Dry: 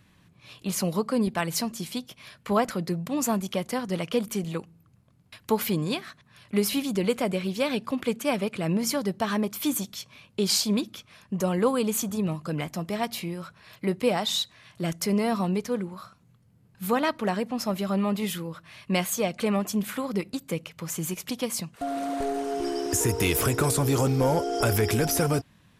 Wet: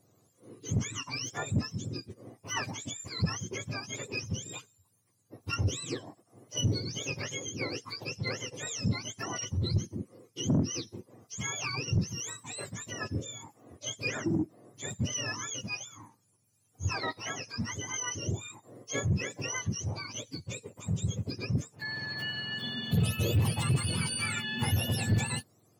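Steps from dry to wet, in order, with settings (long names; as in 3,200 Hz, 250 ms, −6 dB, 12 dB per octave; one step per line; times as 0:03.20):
frequency axis turned over on the octave scale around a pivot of 1,100 Hz
soft clipping −14.5 dBFS, distortion −12 dB
level −5.5 dB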